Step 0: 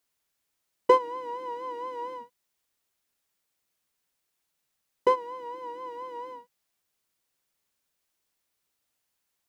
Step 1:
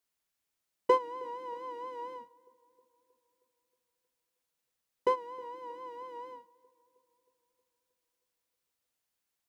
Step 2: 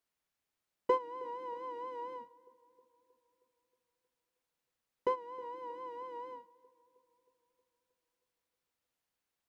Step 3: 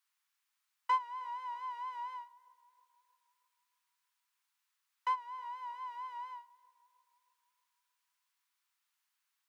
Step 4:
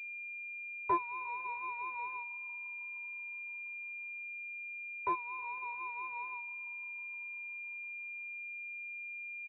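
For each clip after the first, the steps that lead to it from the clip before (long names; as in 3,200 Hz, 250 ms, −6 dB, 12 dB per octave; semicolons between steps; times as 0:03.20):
feedback echo with a low-pass in the loop 315 ms, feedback 60%, low-pass 1,600 Hz, level −23 dB; level −5.5 dB
high-shelf EQ 3,900 Hz −8 dB; in parallel at +1 dB: downward compressor, threshold −42 dBFS, peak gain reduction 20.5 dB; on the sum: level −5.5 dB
Butterworth high-pass 940 Hz 36 dB per octave; level +5 dB
repeating echo 503 ms, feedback 57%, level −23.5 dB; switching amplifier with a slow clock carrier 2,400 Hz; level +2.5 dB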